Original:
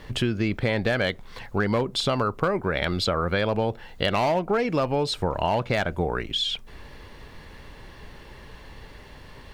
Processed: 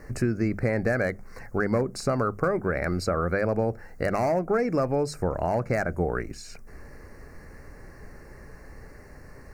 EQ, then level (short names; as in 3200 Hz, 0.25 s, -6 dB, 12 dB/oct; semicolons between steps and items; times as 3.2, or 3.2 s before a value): Butterworth band-stop 3300 Hz, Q 0.93; bell 950 Hz -9.5 dB 0.32 oct; notches 50/100/150/200 Hz; 0.0 dB